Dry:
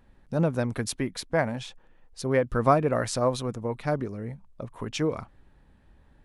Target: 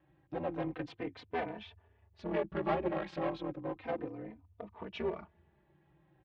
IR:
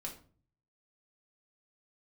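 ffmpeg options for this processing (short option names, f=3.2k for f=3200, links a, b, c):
-filter_complex "[0:a]asplit=2[a][b];[b]aeval=exprs='0.0944*(abs(mod(val(0)/0.0944+3,4)-2)-1)':c=same,volume=-6dB[c];[a][c]amix=inputs=2:normalize=0,aeval=exprs='val(0)*sin(2*PI*84*n/s)':c=same,aeval=exprs='clip(val(0),-1,0.0316)':c=same,highpass=110,equalizer=f=110:t=q:w=4:g=-7,equalizer=f=230:t=q:w=4:g=-7,equalizer=f=330:t=q:w=4:g=4,equalizer=f=800:t=q:w=4:g=3,equalizer=f=1.4k:t=q:w=4:g=-4,lowpass=f=3.2k:w=0.5412,lowpass=f=3.2k:w=1.3066,asplit=2[d][e];[e]adelay=3.2,afreqshift=-0.33[f];[d][f]amix=inputs=2:normalize=1,volume=-4dB"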